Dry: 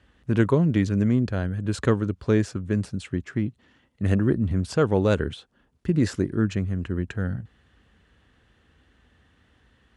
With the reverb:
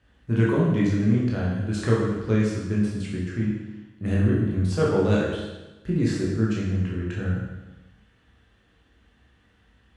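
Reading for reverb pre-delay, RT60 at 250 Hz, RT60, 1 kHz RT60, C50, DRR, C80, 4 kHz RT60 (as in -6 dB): 15 ms, 1.1 s, 1.1 s, 1.1 s, 0.5 dB, -5.5 dB, 3.5 dB, 1.1 s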